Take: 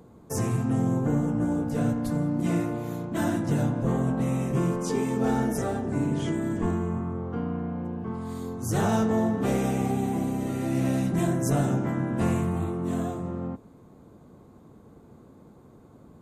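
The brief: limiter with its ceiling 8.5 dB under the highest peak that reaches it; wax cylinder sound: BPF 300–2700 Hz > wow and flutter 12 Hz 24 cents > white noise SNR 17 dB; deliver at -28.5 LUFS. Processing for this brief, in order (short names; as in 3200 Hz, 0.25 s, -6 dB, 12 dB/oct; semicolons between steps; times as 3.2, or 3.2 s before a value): limiter -24 dBFS; BPF 300–2700 Hz; wow and flutter 12 Hz 24 cents; white noise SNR 17 dB; gain +8 dB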